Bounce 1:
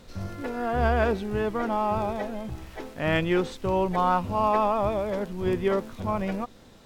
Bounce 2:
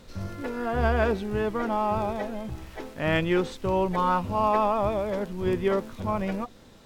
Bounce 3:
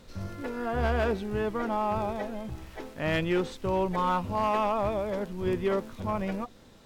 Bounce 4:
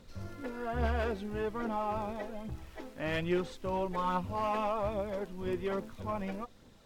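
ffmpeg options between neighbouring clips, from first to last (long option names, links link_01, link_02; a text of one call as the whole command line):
ffmpeg -i in.wav -af "bandreject=frequency=720:width=23" out.wav
ffmpeg -i in.wav -af "volume=18dB,asoftclip=hard,volume=-18dB,volume=-2.5dB" out.wav
ffmpeg -i in.wav -af "aphaser=in_gain=1:out_gain=1:delay=4.4:decay=0.34:speed=1.2:type=triangular,volume=-6dB" out.wav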